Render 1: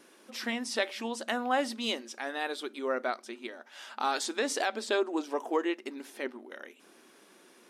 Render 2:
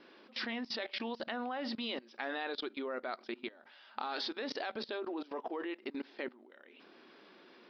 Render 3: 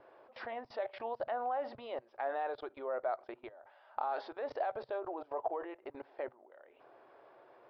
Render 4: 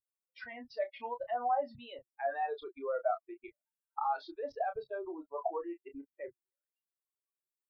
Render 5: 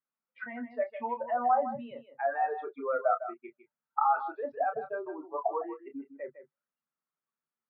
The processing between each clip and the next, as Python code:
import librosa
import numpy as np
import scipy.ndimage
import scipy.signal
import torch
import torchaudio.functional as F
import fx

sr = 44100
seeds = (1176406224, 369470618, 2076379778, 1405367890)

y1 = scipy.signal.sosfilt(scipy.signal.butter(12, 5000.0, 'lowpass', fs=sr, output='sos'), x)
y1 = fx.level_steps(y1, sr, step_db=21)
y1 = F.gain(torch.from_numpy(y1), 4.0).numpy()
y2 = fx.curve_eq(y1, sr, hz=(130.0, 190.0, 650.0, 4100.0), db=(0, -29, 0, -28))
y2 = F.gain(torch.from_numpy(y2), 8.5).numpy()
y3 = fx.bin_expand(y2, sr, power=3.0)
y3 = fx.doubler(y3, sr, ms=29.0, db=-8)
y3 = F.gain(torch.from_numpy(y3), 7.5).numpy()
y4 = fx.cabinet(y3, sr, low_hz=140.0, low_slope=24, high_hz=2200.0, hz=(150.0, 230.0, 340.0, 850.0, 1300.0), db=(9, 10, -4, 3, 9))
y4 = y4 + 10.0 ** (-11.5 / 20.0) * np.pad(y4, (int(156 * sr / 1000.0), 0))[:len(y4)]
y4 = F.gain(torch.from_numpy(y4), 3.0).numpy()